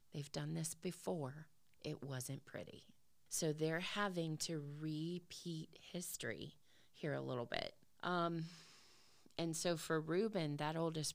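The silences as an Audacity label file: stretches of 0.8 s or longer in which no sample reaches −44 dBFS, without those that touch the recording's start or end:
8.460000	9.390000	silence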